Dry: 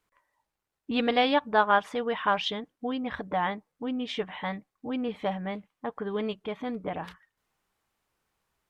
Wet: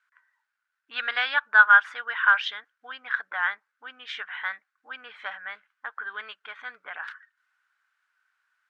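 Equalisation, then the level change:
high-pass with resonance 1,500 Hz, resonance Q 7.8
high-frequency loss of the air 56 metres
−1.0 dB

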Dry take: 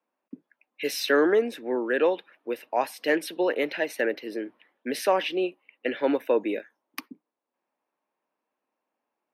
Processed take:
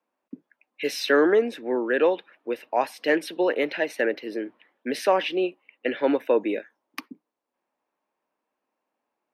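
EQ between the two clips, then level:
high-shelf EQ 9,200 Hz −10.5 dB
+2.0 dB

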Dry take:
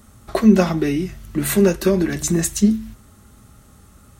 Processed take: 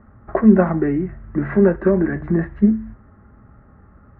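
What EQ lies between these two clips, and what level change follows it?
elliptic low-pass filter 1,800 Hz, stop band 80 dB
+1.5 dB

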